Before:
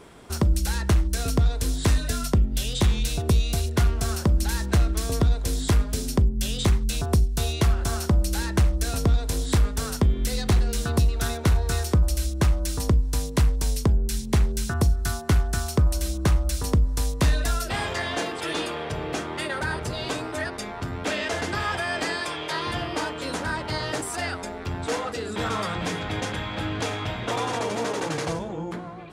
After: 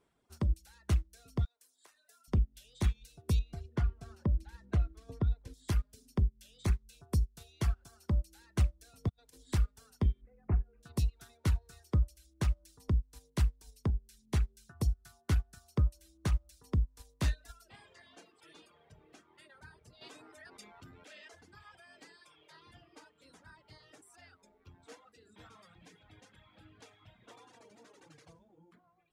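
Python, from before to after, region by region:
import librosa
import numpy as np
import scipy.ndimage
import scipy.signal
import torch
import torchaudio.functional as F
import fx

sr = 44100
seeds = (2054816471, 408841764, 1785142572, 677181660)

y = fx.chain(x, sr, fx.highpass(hz=750.0, slope=12),
    fx.peak_eq(hz=3300.0, db=-6.5, octaves=2.3), at=(1.45, 2.28))
y = fx.chain(y, sr, fx.lowpass(hz=1300.0, slope=6),
    fx.env_flatten(amount_pct=50), at=(3.39, 5.54))
y = fx.chain(y, sr, fx.highpass(hz=61.0, slope=24),
    fx.over_compress(threshold_db=-29.0, ratio=-0.5), at=(9.09, 9.52))
y = fx.chain(y, sr, fx.lowpass(hz=1100.0, slope=12),
    fx.resample_bad(factor=8, down='none', up='filtered'), at=(10.21, 10.83))
y = fx.chain(y, sr, fx.low_shelf(hz=140.0, db=-10.5),
    fx.env_flatten(amount_pct=100), at=(20.01, 21.35))
y = fx.dereverb_blind(y, sr, rt60_s=1.7)
y = fx.dynamic_eq(y, sr, hz=650.0, q=0.7, threshold_db=-37.0, ratio=4.0, max_db=-3)
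y = fx.upward_expand(y, sr, threshold_db=-30.0, expansion=2.5)
y = y * librosa.db_to_amplitude(-6.0)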